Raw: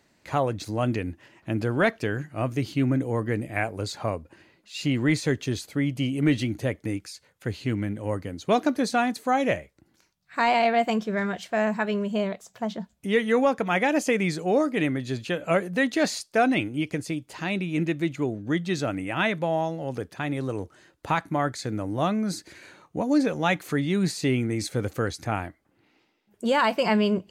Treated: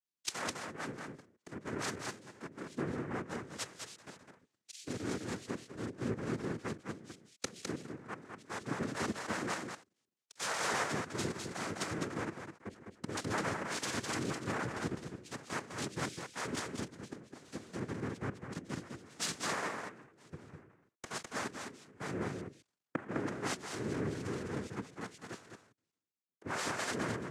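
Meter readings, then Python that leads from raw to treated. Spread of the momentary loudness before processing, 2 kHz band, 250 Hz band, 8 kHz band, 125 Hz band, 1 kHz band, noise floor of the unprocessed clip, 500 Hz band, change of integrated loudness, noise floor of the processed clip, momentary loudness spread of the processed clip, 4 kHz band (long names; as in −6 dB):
10 LU, −11.5 dB, −15.5 dB, −3.0 dB, −14.5 dB, −14.0 dB, −67 dBFS, −16.0 dB, −13.5 dB, below −85 dBFS, 13 LU, −9.0 dB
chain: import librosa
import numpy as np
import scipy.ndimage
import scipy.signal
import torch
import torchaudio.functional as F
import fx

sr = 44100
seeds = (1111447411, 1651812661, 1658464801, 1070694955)

y = fx.partial_stretch(x, sr, pct=109)
y = fx.hum_notches(y, sr, base_hz=60, count=7)
y = fx.leveller(y, sr, passes=3)
y = fx.level_steps(y, sr, step_db=19)
y = fx.leveller(y, sr, passes=3)
y = fx.gate_flip(y, sr, shuts_db=-31.0, range_db=-35)
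y = fx.noise_vocoder(y, sr, seeds[0], bands=3)
y = y + 10.0 ** (-3.0 / 20.0) * np.pad(y, (int(207 * sr / 1000.0), 0))[:len(y)]
y = fx.band_widen(y, sr, depth_pct=100)
y = y * librosa.db_to_amplitude(12.5)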